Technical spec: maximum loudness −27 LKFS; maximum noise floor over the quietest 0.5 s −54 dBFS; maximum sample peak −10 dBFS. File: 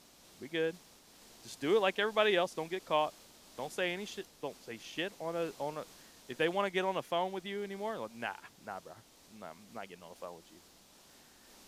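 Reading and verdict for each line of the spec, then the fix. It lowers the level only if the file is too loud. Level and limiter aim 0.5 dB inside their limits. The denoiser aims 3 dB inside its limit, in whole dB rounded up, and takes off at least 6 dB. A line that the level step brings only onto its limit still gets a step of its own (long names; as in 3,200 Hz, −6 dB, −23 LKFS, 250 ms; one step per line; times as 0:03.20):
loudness −35.5 LKFS: in spec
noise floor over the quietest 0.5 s −61 dBFS: in spec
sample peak −15.5 dBFS: in spec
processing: no processing needed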